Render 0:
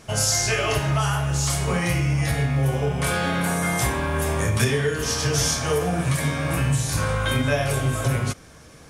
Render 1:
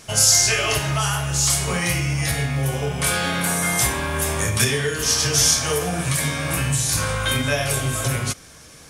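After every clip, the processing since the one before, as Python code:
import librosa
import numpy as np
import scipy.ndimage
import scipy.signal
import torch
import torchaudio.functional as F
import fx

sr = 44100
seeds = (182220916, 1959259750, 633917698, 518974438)

y = fx.high_shelf(x, sr, hz=2200.0, db=10.0)
y = y * librosa.db_to_amplitude(-1.5)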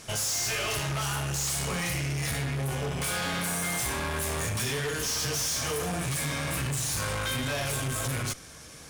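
y = fx.tube_stage(x, sr, drive_db=28.0, bias=0.5)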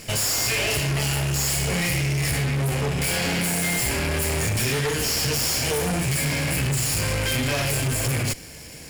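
y = fx.lower_of_two(x, sr, delay_ms=0.41)
y = y * librosa.db_to_amplitude(7.0)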